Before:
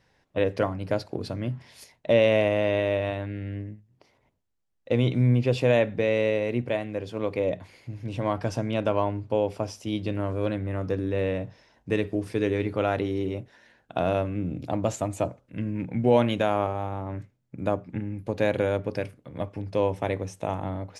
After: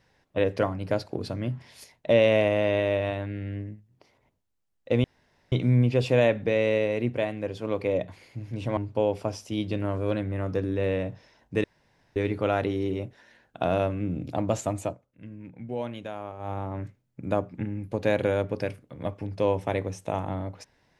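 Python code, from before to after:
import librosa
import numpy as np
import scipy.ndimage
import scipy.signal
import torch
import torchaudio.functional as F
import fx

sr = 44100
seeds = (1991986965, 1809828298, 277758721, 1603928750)

y = fx.edit(x, sr, fx.insert_room_tone(at_s=5.04, length_s=0.48),
    fx.cut(start_s=8.29, length_s=0.83),
    fx.room_tone_fill(start_s=11.99, length_s=0.52),
    fx.fade_down_up(start_s=15.15, length_s=1.73, db=-12.5, fade_s=0.16), tone=tone)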